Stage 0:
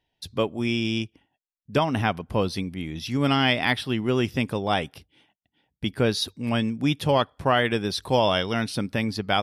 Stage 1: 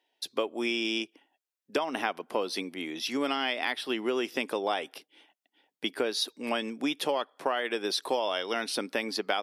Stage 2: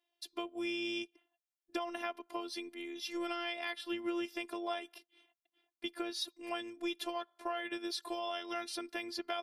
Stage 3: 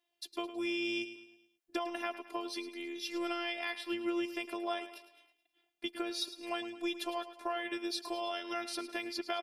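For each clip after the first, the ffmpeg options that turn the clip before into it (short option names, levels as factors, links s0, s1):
-af "highpass=f=310:w=0.5412,highpass=f=310:w=1.3066,acompressor=threshold=0.0447:ratio=10,volume=1.26"
-af "afftfilt=real='hypot(re,im)*cos(PI*b)':imag='0':win_size=512:overlap=0.75,volume=0.531"
-af "aecho=1:1:107|214|321|428|535:0.224|0.103|0.0474|0.0218|0.01,volume=1.19"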